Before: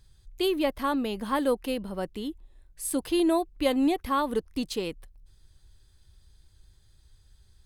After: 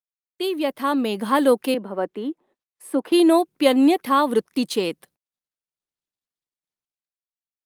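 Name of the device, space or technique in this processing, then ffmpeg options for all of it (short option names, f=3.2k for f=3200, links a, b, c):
video call: -filter_complex "[0:a]asettb=1/sr,asplit=3[a][b][c];[a]atrim=end=1.744[d];[b]atrim=start=1.74:end=3.12,asetpts=PTS-STARTPTS,afade=t=in:d=0.004:c=qsin,afade=t=out:st=1.376:d=0.004:c=qsin,acrossover=split=210 2100:gain=0.0794 1 0.126[e][f][g];[e][f][g]amix=inputs=3:normalize=0[h];[c]atrim=start=3.116[i];[d][h]acrossfade=d=0.004:c1=hsin:c2=qsin[j];[j][i]acrossfade=d=0.004:c1=qsin:c2=hsin,highpass=f=180:w=0.5412,highpass=f=180:w=1.3066,dynaudnorm=f=250:g=7:m=9dB,agate=range=-39dB:threshold=-53dB:ratio=16:detection=peak" -ar 48000 -c:a libopus -b:a 32k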